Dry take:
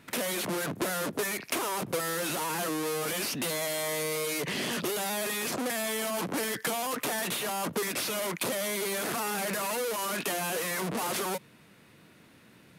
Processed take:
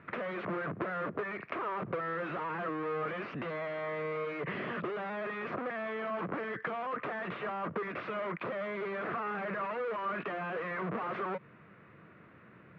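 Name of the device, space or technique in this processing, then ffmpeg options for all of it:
bass amplifier: -af "acompressor=threshold=-33dB:ratio=6,highpass=61,equalizer=frequency=260:width_type=q:width=4:gain=-7,equalizer=frequency=860:width_type=q:width=4:gain=-5,equalizer=frequency=1200:width_type=q:width=4:gain=6,lowpass=frequency=2100:width=0.5412,lowpass=frequency=2100:width=1.3066,volume=2dB"

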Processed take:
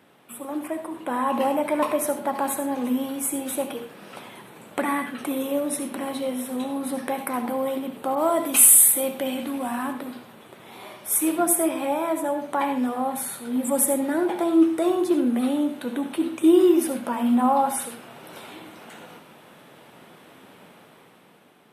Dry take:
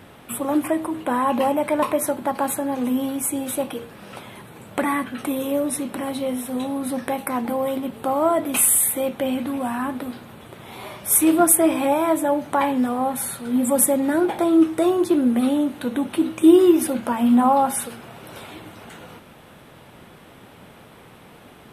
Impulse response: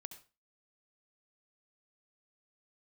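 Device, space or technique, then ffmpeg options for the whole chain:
far laptop microphone: -filter_complex "[1:a]atrim=start_sample=2205[link_01];[0:a][link_01]afir=irnorm=-1:irlink=0,highpass=190,dynaudnorm=framelen=290:gausssize=7:maxgain=8dB,asettb=1/sr,asplit=3[link_02][link_03][link_04];[link_02]atrim=end=8.154[link_05];[link_03]atrim=start=8.15:end=9.93,asetpts=PTS-STARTPTS,afade=type=in:duration=0.004:curve=qsin,afade=type=out:start_time=1.776:duration=0.004:curve=qsin,adynamicequalizer=threshold=0.0178:dfrequency=3200:dqfactor=0.7:tfrequency=3200:tqfactor=0.7:attack=5:release=100:ratio=0.375:range=3.5:mode=boostabove:tftype=highshelf[link_06];[link_04]atrim=start=9.926[link_07];[link_05][link_06]acrossfade=duration=0.004:curve1=hsin:curve2=qsin[link_08];[link_08][link_07]acrossfade=duration=0.004:curve1=qsin:curve2=hsin,volume=-4.5dB"

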